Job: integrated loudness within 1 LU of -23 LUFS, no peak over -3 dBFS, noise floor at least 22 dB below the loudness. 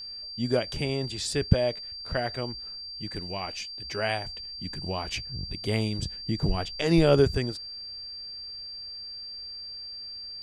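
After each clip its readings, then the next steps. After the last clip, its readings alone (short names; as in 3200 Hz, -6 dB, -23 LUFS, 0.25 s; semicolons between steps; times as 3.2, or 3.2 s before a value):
steady tone 4700 Hz; tone level -37 dBFS; loudness -29.5 LUFS; peak -4.5 dBFS; loudness target -23.0 LUFS
-> notch 4700 Hz, Q 30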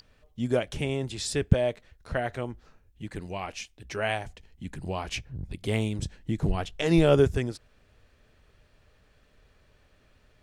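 steady tone none; loudness -28.5 LUFS; peak -4.5 dBFS; loudness target -23.0 LUFS
-> gain +5.5 dB; limiter -3 dBFS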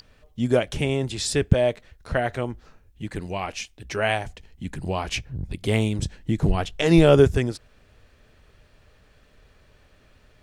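loudness -23.5 LUFS; peak -3.0 dBFS; noise floor -58 dBFS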